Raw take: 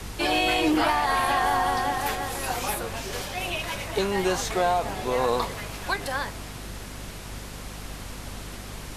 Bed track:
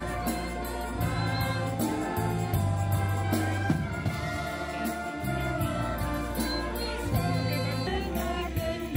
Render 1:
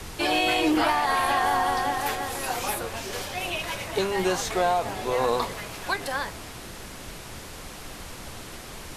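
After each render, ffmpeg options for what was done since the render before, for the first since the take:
-af "bandreject=f=50:t=h:w=6,bandreject=f=100:t=h:w=6,bandreject=f=150:t=h:w=6,bandreject=f=200:t=h:w=6,bandreject=f=250:t=h:w=6"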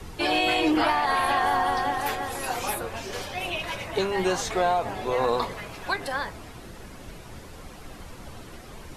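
-af "afftdn=nr=9:nf=-41"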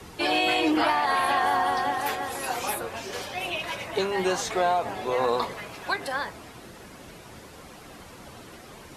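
-af "highpass=f=160:p=1"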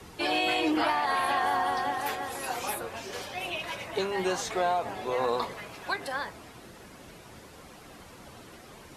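-af "volume=-3.5dB"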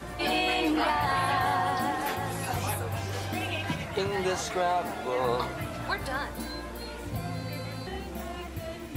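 -filter_complex "[1:a]volume=-7dB[a];[0:a][a]amix=inputs=2:normalize=0"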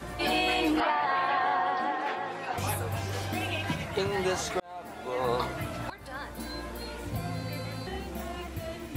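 -filter_complex "[0:a]asettb=1/sr,asplit=3[a][b][c];[a]atrim=end=0.804[d];[b]atrim=start=0.8:end=2.58,asetpts=PTS-STARTPTS,afade=t=in:d=0.004:c=qsin,afade=t=out:st=1.776:d=0.004:c=qsin,highpass=340,lowpass=3.1k[e];[c]atrim=start=2.576[f];[d][e]acrossfade=d=0.004:c1=hsin:c2=qsin[g];[g][f]acrossfade=d=0.004:c1=qsin:c2=hsin,asplit=3[h][i][j];[h]atrim=end=4.6,asetpts=PTS-STARTPTS,afade=t=out:st=4.596:d=0.004:c=hsin[k];[i]atrim=start=4.6:end=5.9,asetpts=PTS-STARTPTS,afade=t=in:d=0.77,afade=t=out:st=1.296:d=0.004:c=hsin:silence=0.125893[l];[j]atrim=start=5.9,asetpts=PTS-STARTPTS,afade=t=in:d=0.7:silence=0.125893[m];[k][l][m]concat=n=3:v=0:a=1"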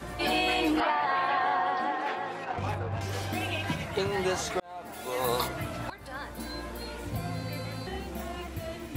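-filter_complex "[0:a]asettb=1/sr,asplit=3[a][b][c];[a]atrim=end=2.444[d];[b]atrim=start=2.44:end=3.01,asetpts=PTS-STARTPTS,afade=t=in:d=0.004:c=qsin,afade=t=out:st=0.566:d=0.004:c=qsin,adynamicsmooth=sensitivity=4:basefreq=1.6k[e];[c]atrim=start=3.006[f];[d][e]acrossfade=d=0.004:c1=hsin:c2=qsin[g];[g][f]acrossfade=d=0.004:c1=qsin:c2=hsin,asplit=3[h][i][j];[h]afade=t=out:st=4.92:d=0.02[k];[i]aemphasis=mode=production:type=75fm,afade=t=in:st=4.92:d=0.02,afade=t=out:st=5.47:d=0.02[l];[j]afade=t=in:st=5.47:d=0.02[m];[k][l][m]amix=inputs=3:normalize=0"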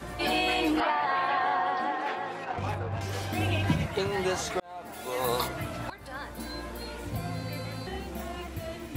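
-filter_complex "[0:a]asettb=1/sr,asplit=3[a][b][c];[a]atrim=end=3.384[d];[b]atrim=start=3.38:end=3.87,asetpts=PTS-STARTPTS,afade=t=in:d=0.004:c=qsin,afade=t=out:st=0.486:d=0.004:c=qsin,lowshelf=f=370:g=9[e];[c]atrim=start=3.866[f];[d][e]acrossfade=d=0.004:c1=hsin:c2=qsin[g];[g][f]acrossfade=d=0.004:c1=qsin:c2=hsin"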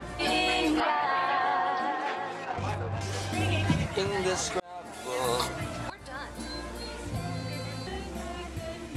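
-af "lowpass=f=10k:w=0.5412,lowpass=f=10k:w=1.3066,adynamicequalizer=threshold=0.00398:dfrequency=4500:dqfactor=0.7:tfrequency=4500:tqfactor=0.7:attack=5:release=100:ratio=0.375:range=2.5:mode=boostabove:tftype=highshelf"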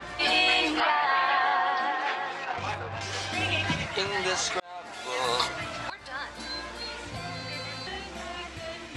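-af "lowpass=5.4k,tiltshelf=f=660:g=-7"

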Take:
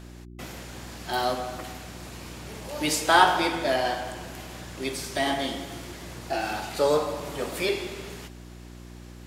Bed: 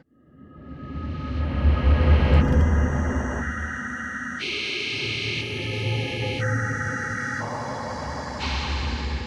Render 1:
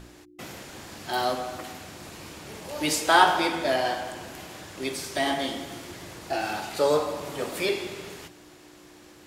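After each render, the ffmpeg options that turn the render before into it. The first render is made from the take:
-af "bandreject=f=60:t=h:w=4,bandreject=f=120:t=h:w=4,bandreject=f=180:t=h:w=4,bandreject=f=240:t=h:w=4"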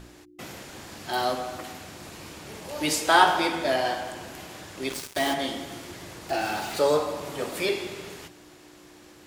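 -filter_complex "[0:a]asplit=3[a][b][c];[a]afade=t=out:st=4.88:d=0.02[d];[b]acrusher=bits=4:mix=0:aa=0.5,afade=t=in:st=4.88:d=0.02,afade=t=out:st=5.33:d=0.02[e];[c]afade=t=in:st=5.33:d=0.02[f];[d][e][f]amix=inputs=3:normalize=0,asettb=1/sr,asplit=3[g][h][i];[g]atrim=end=6.294[j];[h]atrim=start=6.29:end=6.91,asetpts=PTS-STARTPTS,afade=t=in:d=0.004:c=qsin,afade=t=out:st=0.616:d=0.004:c=qsin,aeval=exprs='val(0)+0.5*0.0133*sgn(val(0))':c=same[k];[i]atrim=start=6.906[l];[j][k]acrossfade=d=0.004:c1=hsin:c2=qsin[m];[m][l]acrossfade=d=0.004:c1=qsin:c2=hsin"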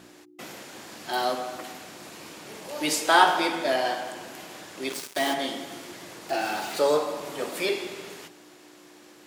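-af "highpass=200,bandreject=f=415.5:t=h:w=4,bandreject=f=831:t=h:w=4,bandreject=f=1.2465k:t=h:w=4"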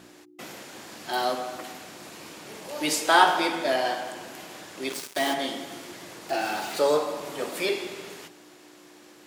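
-af anull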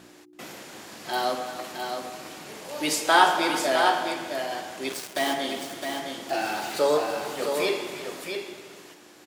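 -af "aecho=1:1:330|662:0.188|0.501"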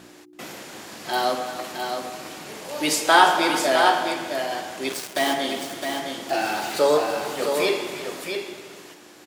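-af "volume=3.5dB,alimiter=limit=-2dB:level=0:latency=1"

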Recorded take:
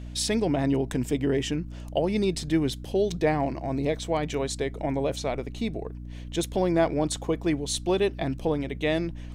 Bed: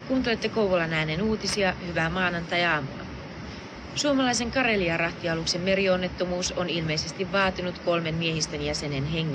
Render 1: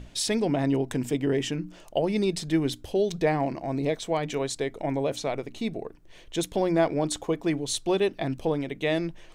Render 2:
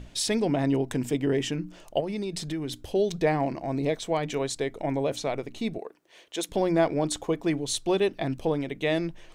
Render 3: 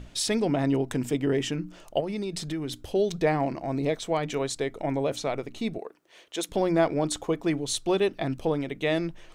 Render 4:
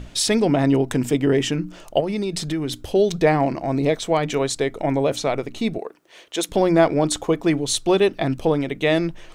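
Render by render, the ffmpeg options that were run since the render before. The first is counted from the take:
-af "bandreject=f=60:t=h:w=6,bandreject=f=120:t=h:w=6,bandreject=f=180:t=h:w=6,bandreject=f=240:t=h:w=6,bandreject=f=300:t=h:w=6"
-filter_complex "[0:a]asettb=1/sr,asplit=3[a][b][c];[a]atrim=end=2.004[d];[b]atrim=start=2:end=2.8,asetpts=PTS-STARTPTS,afade=t=in:d=0.004:c=qsin,afade=t=out:st=0.796:d=0.004:c=qsin,acompressor=threshold=-28dB:ratio=5:attack=3.2:release=140:knee=1:detection=peak[e];[c]atrim=start=2.796[f];[d][e]acrossfade=d=0.004:c1=hsin:c2=qsin[g];[g][f]acrossfade=d=0.004:c1=qsin:c2=hsin,asettb=1/sr,asplit=3[h][i][j];[h]atrim=end=5.784[k];[i]atrim=start=5.78:end=6.49,asetpts=PTS-STARTPTS,afade=t=in:d=0.004:c=qsin,afade=t=out:st=0.706:d=0.004:c=qsin,highpass=390[l];[j]atrim=start=6.486[m];[k][l]acrossfade=d=0.004:c1=hsin:c2=qsin[n];[n][m]acrossfade=d=0.004:c1=qsin:c2=hsin"
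-af "equalizer=f=1.3k:w=5.9:g=4.5"
-af "volume=7dB"

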